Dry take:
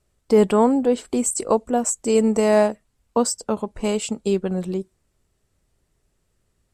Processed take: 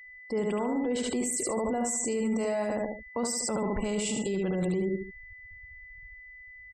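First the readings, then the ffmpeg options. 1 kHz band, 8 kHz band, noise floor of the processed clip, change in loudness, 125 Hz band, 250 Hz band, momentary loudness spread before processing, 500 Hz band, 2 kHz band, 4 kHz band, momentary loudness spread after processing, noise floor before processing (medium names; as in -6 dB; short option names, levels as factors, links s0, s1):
-10.5 dB, -5.0 dB, -49 dBFS, -9.0 dB, -5.0 dB, -8.0 dB, 9 LU, -10.5 dB, -3.0 dB, -5.0 dB, 18 LU, -70 dBFS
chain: -af "areverse,acompressor=threshold=0.0501:ratio=8,areverse,aecho=1:1:72|144|216|288:0.631|0.221|0.0773|0.0271,afftfilt=real='re*gte(hypot(re,im),0.00398)':imag='im*gte(hypot(re,im),0.00398)':win_size=1024:overlap=0.75,dynaudnorm=f=320:g=7:m=5.01,alimiter=level_in=1.06:limit=0.0631:level=0:latency=1:release=50,volume=0.944,aeval=exprs='val(0)+0.00398*sin(2*PI*2000*n/s)':c=same,volume=1.26"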